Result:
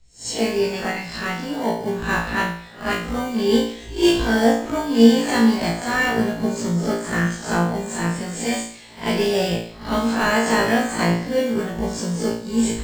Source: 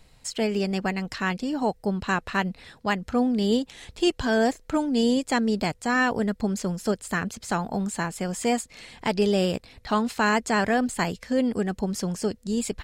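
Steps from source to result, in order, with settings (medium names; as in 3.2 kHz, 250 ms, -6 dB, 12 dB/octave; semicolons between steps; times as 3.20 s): reverse spectral sustain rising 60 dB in 0.43 s; elliptic low-pass 8.4 kHz; in parallel at -8 dB: sample-rate reducer 1.3 kHz, jitter 0%; on the sum: flutter echo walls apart 3 m, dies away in 0.6 s; three bands expanded up and down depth 40%; trim -1.5 dB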